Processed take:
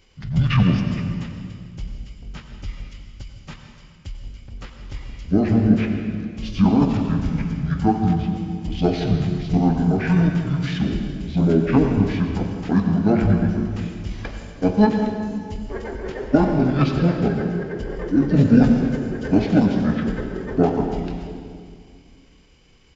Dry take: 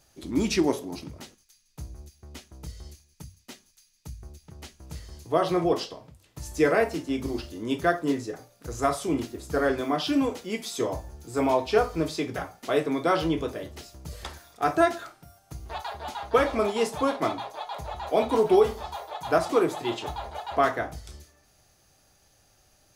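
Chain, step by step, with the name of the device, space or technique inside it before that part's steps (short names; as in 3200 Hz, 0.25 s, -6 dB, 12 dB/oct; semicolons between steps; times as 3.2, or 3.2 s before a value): monster voice (pitch shift -8 st; formant shift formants -5 st; low shelf 230 Hz +6 dB; reverb RT60 2.0 s, pre-delay 82 ms, DRR 4.5 dB); gain +3.5 dB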